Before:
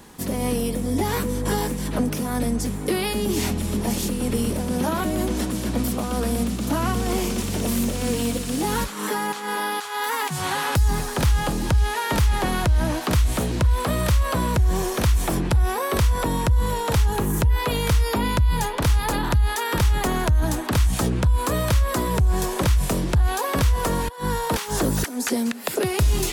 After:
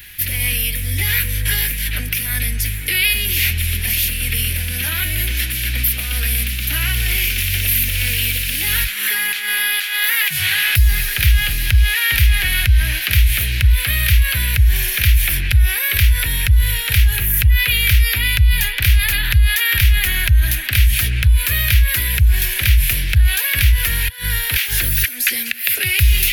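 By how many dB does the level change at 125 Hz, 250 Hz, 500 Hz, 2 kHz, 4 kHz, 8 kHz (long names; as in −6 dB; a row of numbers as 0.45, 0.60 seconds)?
+5.5, −12.5, −15.0, +13.0, +12.0, +8.0 decibels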